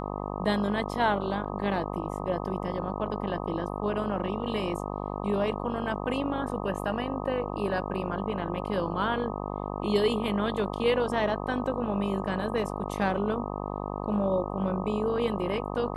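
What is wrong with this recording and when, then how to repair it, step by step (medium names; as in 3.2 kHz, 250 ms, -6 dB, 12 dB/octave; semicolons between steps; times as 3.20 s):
buzz 50 Hz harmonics 25 -34 dBFS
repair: de-hum 50 Hz, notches 25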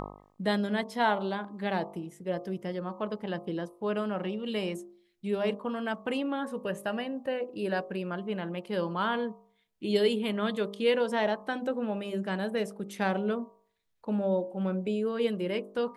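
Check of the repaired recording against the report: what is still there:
nothing left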